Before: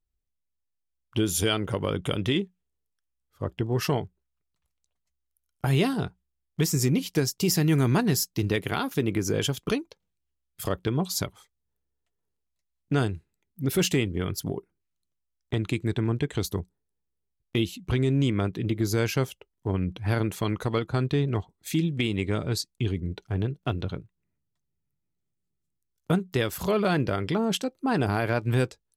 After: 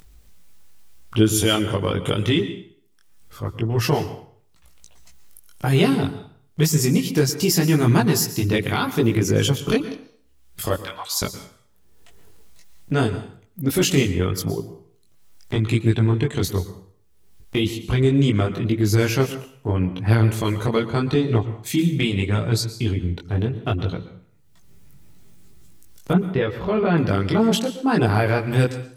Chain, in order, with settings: 2.37–3.76 transient shaper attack -6 dB, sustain -2 dB; 10.76–11.22 HPF 920 Hz 24 dB/oct; upward compressor, threshold -33 dBFS; chorus voices 2, 0.82 Hz, delay 20 ms, depth 2.6 ms; 26.13–26.98 air absorption 380 m; plate-style reverb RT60 0.52 s, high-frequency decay 0.9×, pre-delay 0.105 s, DRR 12 dB; gain +8.5 dB

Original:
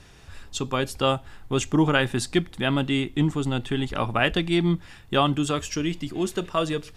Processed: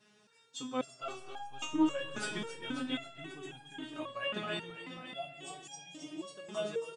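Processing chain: FFT band-pass 110–10000 Hz; 0.84–1.67 overdrive pedal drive 10 dB, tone 3100 Hz, clips at -10 dBFS; 4.7–5.98 fixed phaser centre 340 Hz, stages 6; on a send: feedback echo 0.27 s, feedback 59%, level -5.5 dB; on the sum: digital reverb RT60 3.2 s, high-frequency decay 0.6×, pre-delay 10 ms, DRR 9.5 dB; stepped resonator 3.7 Hz 210–820 Hz

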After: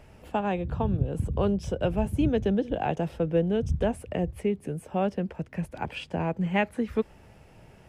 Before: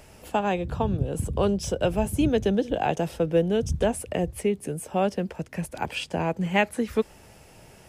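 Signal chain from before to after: tone controls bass +4 dB, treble -11 dB; gain -3.5 dB

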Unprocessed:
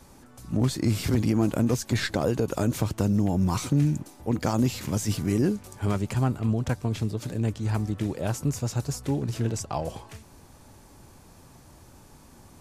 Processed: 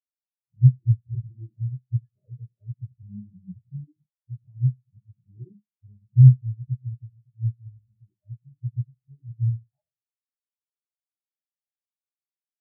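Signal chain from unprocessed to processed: HPF 60 Hz 12 dB/oct; low shelf 90 Hz +10 dB; reverb RT60 0.75 s, pre-delay 4 ms, DRR -0.5 dB; spectral expander 4:1

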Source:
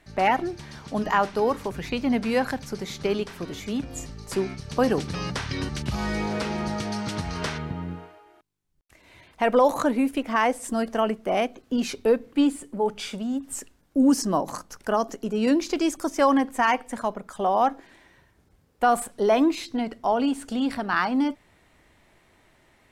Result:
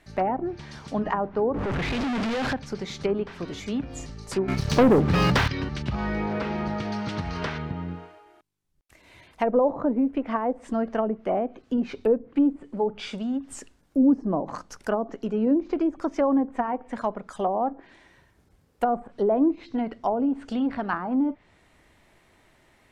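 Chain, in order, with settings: 1.54–2.53 infinite clipping; treble ducked by the level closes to 630 Hz, closed at -19 dBFS; 4.48–5.48 sample leveller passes 3

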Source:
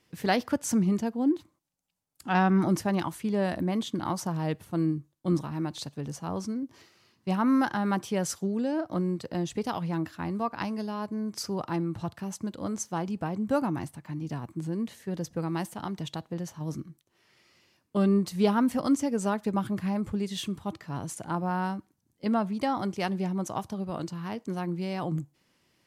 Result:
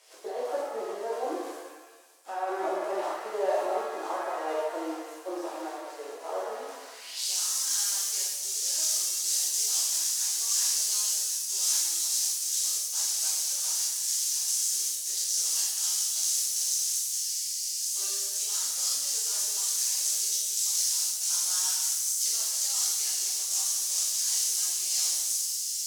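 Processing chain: switching spikes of -21 dBFS; steep high-pass 360 Hz 36 dB/oct; bell 8000 Hz +12 dB 2.3 oct; negative-ratio compressor -26 dBFS, ratio -0.5; band-pass sweep 610 Hz -> 6100 Hz, 6.66–7.31; shimmer reverb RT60 1.2 s, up +7 st, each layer -8 dB, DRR -7 dB; gain -3.5 dB

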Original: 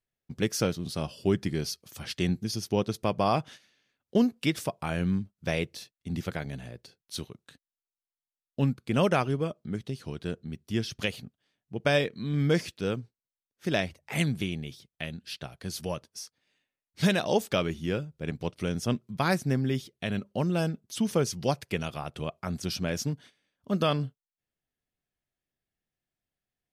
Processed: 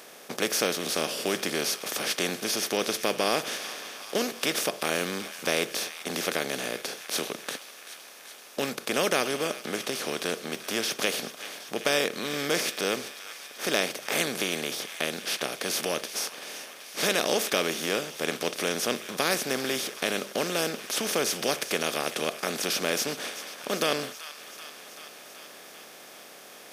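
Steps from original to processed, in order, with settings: per-bin compression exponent 0.4; HPF 430 Hz 12 dB/oct; high shelf 8300 Hz +10.5 dB; thin delay 0.384 s, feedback 73%, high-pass 1400 Hz, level -13.5 dB; dynamic EQ 890 Hz, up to -5 dB, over -36 dBFS, Q 1.2; gain -2 dB

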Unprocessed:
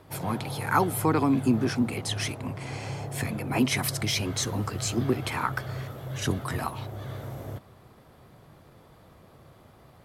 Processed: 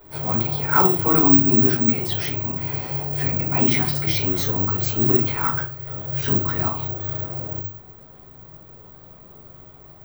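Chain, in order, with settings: 4.97–5.87 gate -31 dBFS, range -11 dB; reverb RT60 0.30 s, pre-delay 3 ms, DRR -7.5 dB; careless resampling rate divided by 2×, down filtered, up zero stuff; gain -7 dB

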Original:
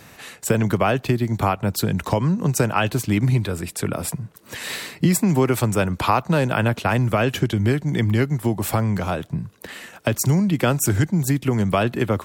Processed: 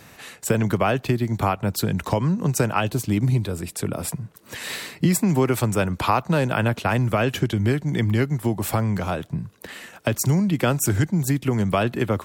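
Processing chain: 2.8–3.98 dynamic EQ 1800 Hz, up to -6 dB, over -39 dBFS, Q 0.83; gain -1.5 dB

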